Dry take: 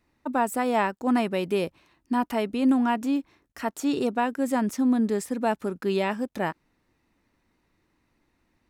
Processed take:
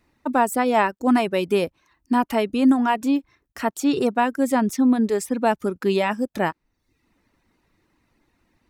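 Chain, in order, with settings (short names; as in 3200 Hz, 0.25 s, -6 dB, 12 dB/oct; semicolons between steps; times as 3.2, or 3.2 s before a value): reverb removal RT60 0.6 s; gain +5.5 dB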